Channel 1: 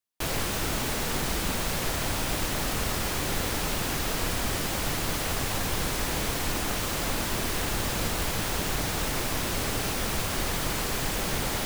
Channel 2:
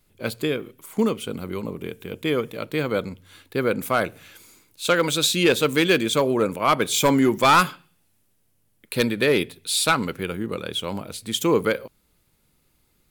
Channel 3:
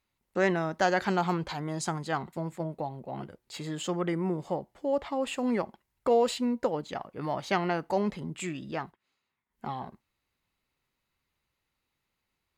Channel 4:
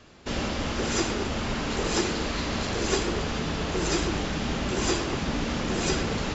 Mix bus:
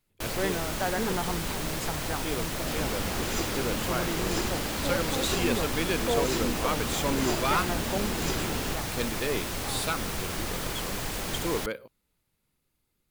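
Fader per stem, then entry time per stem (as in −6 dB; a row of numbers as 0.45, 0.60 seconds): −4.0, −11.5, −5.0, −6.0 decibels; 0.00, 0.00, 0.00, 2.40 seconds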